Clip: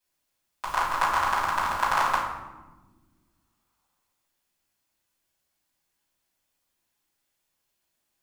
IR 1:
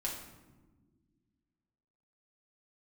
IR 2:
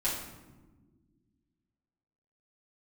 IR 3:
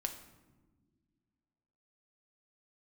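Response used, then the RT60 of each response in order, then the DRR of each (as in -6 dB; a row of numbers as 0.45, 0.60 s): 2; not exponential, not exponential, not exponential; -4.0, -9.5, 4.5 dB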